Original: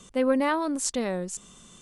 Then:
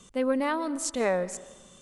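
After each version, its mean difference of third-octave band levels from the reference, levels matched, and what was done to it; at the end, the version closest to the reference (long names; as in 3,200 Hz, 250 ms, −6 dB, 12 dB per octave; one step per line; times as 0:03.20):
3.0 dB: gain on a spectral selection 0:01.01–0:01.35, 400–2,600 Hz +9 dB
comb and all-pass reverb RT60 1.2 s, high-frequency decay 0.65×, pre-delay 110 ms, DRR 17.5 dB
level −3 dB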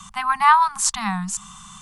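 7.0 dB: Chebyshev band-stop filter 210–760 Hz, order 5
parametric band 1,100 Hz +10 dB 0.69 octaves
level +8.5 dB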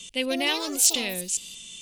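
9.5 dB: high shelf with overshoot 1,900 Hz +13.5 dB, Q 3
delay with pitch and tempo change per echo 185 ms, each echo +5 semitones, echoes 3, each echo −6 dB
level −5 dB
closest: first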